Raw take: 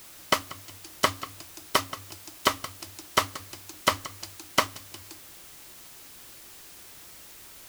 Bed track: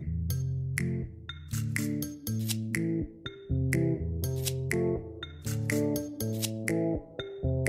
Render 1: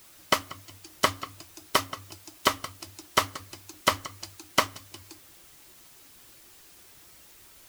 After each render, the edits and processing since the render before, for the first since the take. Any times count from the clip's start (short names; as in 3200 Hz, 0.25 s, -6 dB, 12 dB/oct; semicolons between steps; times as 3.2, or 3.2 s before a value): denoiser 6 dB, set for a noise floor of -48 dBFS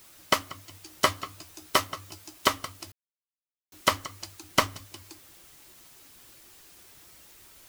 0.71–2.33 doubler 13 ms -8 dB; 2.92–3.72 mute; 4.42–4.86 low shelf 190 Hz +7 dB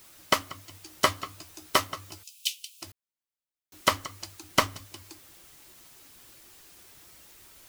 2.23–2.82 Chebyshev high-pass 2500 Hz, order 6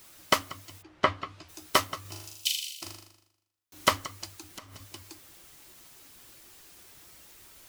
0.81–1.48 LPF 1700 Hz -> 4400 Hz; 2.01–3.88 flutter echo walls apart 6.8 m, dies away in 0.81 s; 4.44–4.89 compressor 10:1, threshold -41 dBFS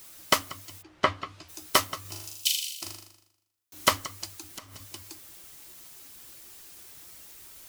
high shelf 5000 Hz +6 dB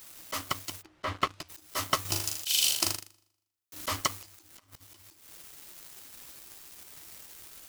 sample leveller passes 3; auto swell 0.244 s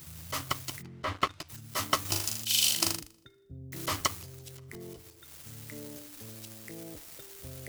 add bed track -16.5 dB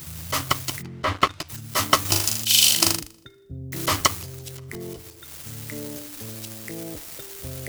gain +9.5 dB; limiter -1 dBFS, peak gain reduction 1 dB